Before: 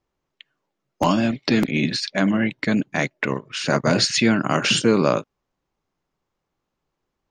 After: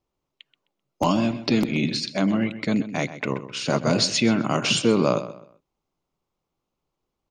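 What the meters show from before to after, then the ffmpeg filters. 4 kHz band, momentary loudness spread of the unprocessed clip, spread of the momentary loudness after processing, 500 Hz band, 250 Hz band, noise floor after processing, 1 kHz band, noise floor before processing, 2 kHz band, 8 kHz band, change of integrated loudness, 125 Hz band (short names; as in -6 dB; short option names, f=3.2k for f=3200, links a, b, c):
-2.0 dB, 7 LU, 8 LU, -2.0 dB, -2.0 dB, -82 dBFS, -3.0 dB, -80 dBFS, -5.5 dB, -2.0 dB, -2.5 dB, -1.5 dB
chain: -filter_complex "[0:a]equalizer=f=1.7k:t=o:w=0.43:g=-9.5,asplit=2[a][b];[b]adelay=129,lowpass=f=4.2k:p=1,volume=-13dB,asplit=2[c][d];[d]adelay=129,lowpass=f=4.2k:p=1,volume=0.31,asplit=2[e][f];[f]adelay=129,lowpass=f=4.2k:p=1,volume=0.31[g];[c][e][g]amix=inputs=3:normalize=0[h];[a][h]amix=inputs=2:normalize=0,volume=-2dB"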